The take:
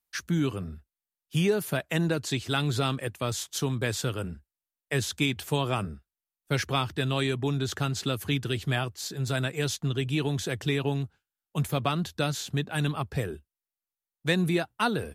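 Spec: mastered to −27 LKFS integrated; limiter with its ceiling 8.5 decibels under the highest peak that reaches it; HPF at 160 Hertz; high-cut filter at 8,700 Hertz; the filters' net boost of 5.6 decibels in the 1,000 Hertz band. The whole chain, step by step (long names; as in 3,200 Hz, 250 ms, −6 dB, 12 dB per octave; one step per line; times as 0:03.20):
high-pass filter 160 Hz
low-pass filter 8,700 Hz
parametric band 1,000 Hz +7.5 dB
level +4 dB
brickwall limiter −14 dBFS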